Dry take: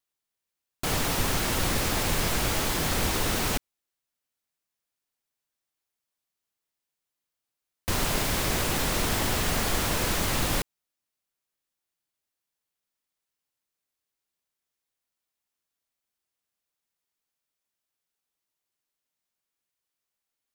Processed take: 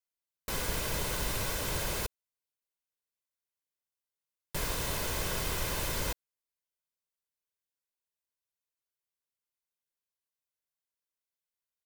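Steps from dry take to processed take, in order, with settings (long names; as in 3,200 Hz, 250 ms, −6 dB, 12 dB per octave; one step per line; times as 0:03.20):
high-shelf EQ 10,000 Hz +7.5 dB
comb filter 3.4 ms, depth 39%
wrong playback speed 45 rpm record played at 78 rpm
level −8 dB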